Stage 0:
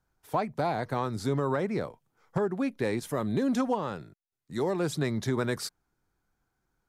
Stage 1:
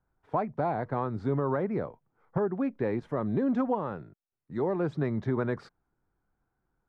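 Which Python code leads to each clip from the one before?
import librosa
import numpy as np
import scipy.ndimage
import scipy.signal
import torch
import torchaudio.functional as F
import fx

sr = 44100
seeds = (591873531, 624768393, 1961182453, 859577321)

y = scipy.signal.sosfilt(scipy.signal.butter(2, 1500.0, 'lowpass', fs=sr, output='sos'), x)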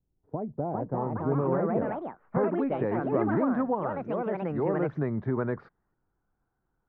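y = fx.echo_pitch(x, sr, ms=472, semitones=4, count=2, db_per_echo=-3.0)
y = fx.filter_sweep_lowpass(y, sr, from_hz=350.0, to_hz=1600.0, start_s=0.09, end_s=2.26, q=0.88)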